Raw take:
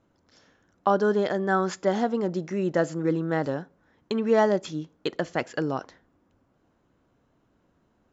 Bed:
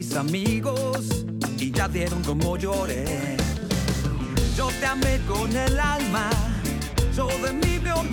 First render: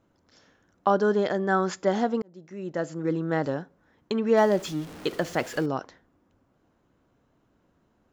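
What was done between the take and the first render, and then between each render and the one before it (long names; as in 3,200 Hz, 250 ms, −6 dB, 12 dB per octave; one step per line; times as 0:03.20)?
0:02.22–0:03.33: fade in
0:04.37–0:05.66: converter with a step at zero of −37.5 dBFS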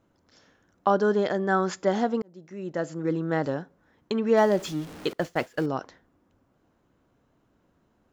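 0:05.13–0:05.74: downward expander −28 dBFS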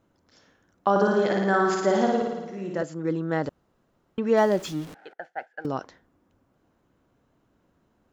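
0:00.90–0:02.83: flutter between parallel walls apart 9.6 metres, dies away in 1.2 s
0:03.49–0:04.18: fill with room tone
0:04.94–0:05.65: pair of resonant band-passes 1,100 Hz, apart 0.96 octaves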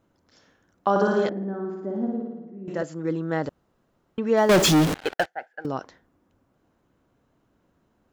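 0:01.29–0:02.68: resonant band-pass 250 Hz, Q 2.3
0:04.49–0:05.26: leveller curve on the samples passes 5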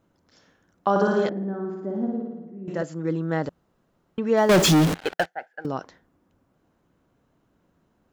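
parametric band 170 Hz +4 dB 0.28 octaves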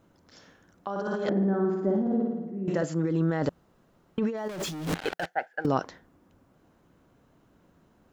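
compressor whose output falls as the input rises −28 dBFS, ratio −1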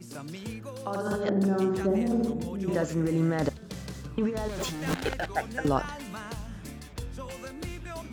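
mix in bed −15 dB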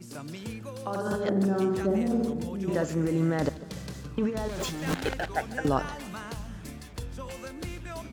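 repeating echo 146 ms, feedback 56%, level −19 dB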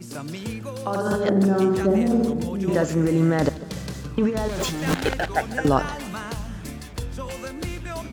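level +6.5 dB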